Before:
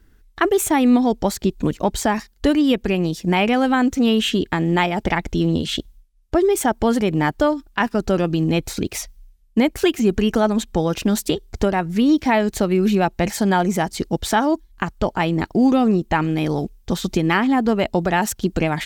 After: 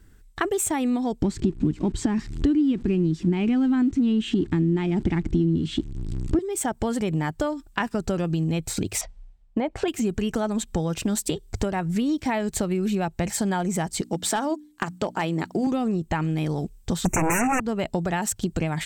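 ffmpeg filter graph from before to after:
-filter_complex "[0:a]asettb=1/sr,asplit=3[s0][s1][s2];[s0]atrim=end=1.224[s3];[s1]atrim=start=1.22:end=6.39,asetpts=PTS-STARTPTS,afade=t=in:d=0.004:c=qsin,afade=t=out:st=5.166:d=0.004:c=qsin,aeval=exprs='val(0)+0.5*0.0282*sgn(val(0))':c=same,lowpass=5200,lowshelf=f=430:t=q:w=3:g=8.5[s4];[s2]atrim=start=6.386[s5];[s3][s4]acrossfade=d=0.004:c1=hsin:c2=qsin[s6];[s6][s5]acrossfade=d=0.004:c1=qsin:c2=hsin,asettb=1/sr,asplit=3[s7][s8][s9];[s7]atrim=end=9.014[s10];[s8]atrim=start=9.01:end=9.88,asetpts=PTS-STARTPTS,afade=t=in:d=0.004:c=qsin,afade=t=out:st=0.866:d=0.004:c=qsin,lowpass=3500,equalizer=f=730:t=o:w=1.2:g=11.5,acompressor=threshold=0.178:ratio=2:attack=3.2:release=140:knee=1:detection=peak[s11];[s9]atrim=start=9.876[s12];[s10][s11]acrossfade=d=0.004:c1=hsin:c2=qsin[s13];[s13][s12]acrossfade=d=0.004:c1=qsin:c2=hsin,asettb=1/sr,asplit=3[s14][s15][s16];[s14]atrim=end=14.014[s17];[s15]atrim=start=14.01:end=15.67,asetpts=PTS-STARTPTS,afade=t=in:d=0.004:c=qsin,afade=t=out:st=1.656:d=0.004:c=qsin,highpass=210,bandreject=f=60:t=h:w=6,bandreject=f=120:t=h:w=6,bandreject=f=180:t=h:w=6,bandreject=f=240:t=h:w=6,bandreject=f=300:t=h:w=6,asoftclip=type=hard:threshold=0.299[s18];[s16]atrim=start=15.666[s19];[s17][s18]acrossfade=d=0.004:c1=hsin:c2=qsin[s20];[s20][s19]acrossfade=d=0.004:c1=qsin:c2=hsin,asettb=1/sr,asplit=3[s21][s22][s23];[s21]atrim=end=17.054[s24];[s22]atrim=start=17.05:end=17.6,asetpts=PTS-STARTPTS,afade=t=in:d=0.004:c=qsin,afade=t=out:st=0.546:d=0.004:c=qsin,lowshelf=f=240:g=-4.5,aeval=exprs='0.531*sin(PI/2*6.31*val(0)/0.531)':c=same,asuperstop=centerf=4000:order=20:qfactor=1.3[s25];[s23]atrim=start=17.596[s26];[s24][s25]acrossfade=d=0.004:c1=hsin:c2=qsin[s27];[s27][s26]acrossfade=d=0.004:c1=qsin:c2=hsin,equalizer=f=100:t=o:w=0.33:g=8,equalizer=f=160:t=o:w=0.33:g=6,equalizer=f=8000:t=o:w=0.33:g=10,acompressor=threshold=0.0708:ratio=4"

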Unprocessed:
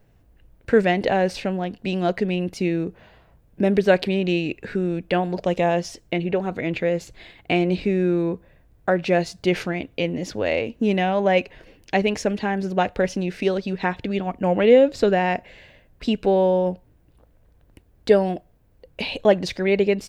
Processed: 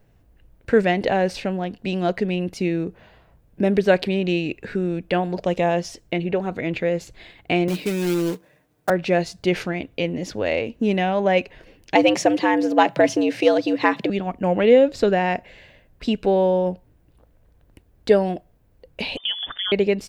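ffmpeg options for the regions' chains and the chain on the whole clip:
-filter_complex "[0:a]asettb=1/sr,asplit=3[s0][s1][s2];[s0]atrim=end=7.684[s3];[s1]atrim=start=7.68:end=8.9,asetpts=PTS-STARTPTS,afade=t=in:d=0.004:c=qsin,afade=t=out:st=1.216:d=0.004:c=qsin,highpass=190,acrusher=bits=3:mode=log:mix=0:aa=0.000001,aecho=1:1:6.6:0.44,atrim=end_sample=53802[s4];[s2]atrim=start=8.896[s5];[s3][s4]acrossfade=d=0.004:c1=hsin:c2=qsin[s6];[s6][s5]acrossfade=d=0.004:c1=qsin:c2=hsin,asettb=1/sr,asplit=3[s7][s8][s9];[s7]atrim=end=11.954[s10];[s8]atrim=start=11.95:end=14.1,asetpts=PTS-STARTPTS,afade=t=in:d=0.004:c=qsin,afade=t=out:st=2.146:d=0.004:c=qsin,acontrast=32,afreqshift=100[s11];[s9]atrim=start=14.096[s12];[s10][s11]acrossfade=d=0.004:c1=hsin:c2=qsin[s13];[s13][s12]acrossfade=d=0.004:c1=qsin:c2=hsin,asettb=1/sr,asplit=3[s14][s15][s16];[s14]atrim=end=19.174[s17];[s15]atrim=start=19.17:end=19.72,asetpts=PTS-STARTPTS,afade=t=in:d=0.004:c=qsin,afade=t=out:st=0.546:d=0.004:c=qsin,acompressor=threshold=0.0708:ratio=4:attack=3.2:release=140:knee=1:detection=peak,lowpass=f=3100:t=q:w=0.5098,lowpass=f=3100:t=q:w=0.6013,lowpass=f=3100:t=q:w=0.9,lowpass=f=3100:t=q:w=2.563,afreqshift=-3600[s18];[s16]atrim=start=19.716[s19];[s17][s18]acrossfade=d=0.004:c1=hsin:c2=qsin[s20];[s20][s19]acrossfade=d=0.004:c1=qsin:c2=hsin"

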